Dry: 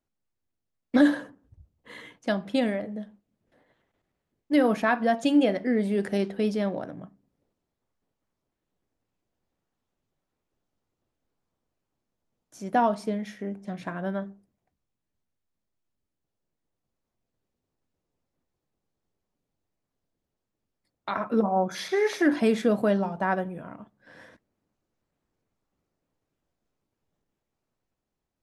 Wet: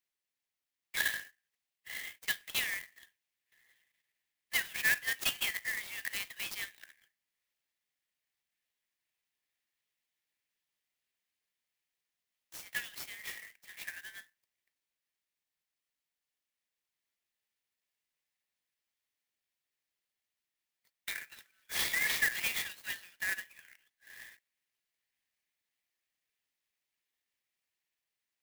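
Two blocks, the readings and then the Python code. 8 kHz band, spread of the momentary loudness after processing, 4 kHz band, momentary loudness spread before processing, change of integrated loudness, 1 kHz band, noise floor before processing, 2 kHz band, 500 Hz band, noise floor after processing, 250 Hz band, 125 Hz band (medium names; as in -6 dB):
+7.5 dB, 20 LU, +2.5 dB, 18 LU, -8.5 dB, -22.5 dB, -84 dBFS, +0.5 dB, -30.5 dB, under -85 dBFS, -35.5 dB, -24.0 dB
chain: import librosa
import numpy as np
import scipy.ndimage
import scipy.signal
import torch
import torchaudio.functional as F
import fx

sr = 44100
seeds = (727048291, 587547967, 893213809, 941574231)

y = scipy.signal.sosfilt(scipy.signal.butter(16, 1700.0, 'highpass', fs=sr, output='sos'), x)
y = fx.clock_jitter(y, sr, seeds[0], jitter_ms=0.038)
y = F.gain(torch.from_numpy(y), 4.5).numpy()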